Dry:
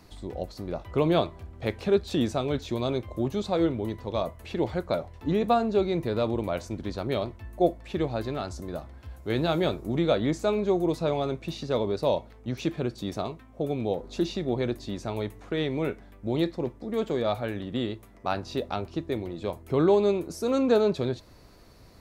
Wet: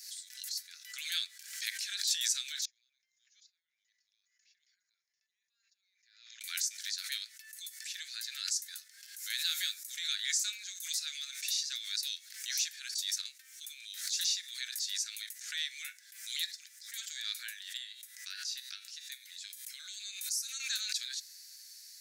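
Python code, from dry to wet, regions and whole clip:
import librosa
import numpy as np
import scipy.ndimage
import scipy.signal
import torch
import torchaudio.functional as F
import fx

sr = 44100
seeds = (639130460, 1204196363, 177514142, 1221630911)

y = fx.chain(x, sr, fx.over_compress(threshold_db=-32.0, ratio=-1.0),
    fx.cheby_ripple(hz=7000.0, ripple_db=6),
    fx.gate_flip(shuts_db=-39.0, range_db=-30), at=(2.65, 6.41))
y = fx.chain(y, sr, fx.comb_fb(f0_hz=64.0, decay_s=0.45, harmonics='odd', damping=0.0, mix_pct=60),
    fx.band_squash(depth_pct=70), at=(17.77, 20.6))
y = scipy.signal.sosfilt(scipy.signal.butter(12, 1600.0, 'highpass', fs=sr, output='sos'), y)
y = fx.high_shelf_res(y, sr, hz=4000.0, db=13.0, q=1.5)
y = fx.pre_swell(y, sr, db_per_s=70.0)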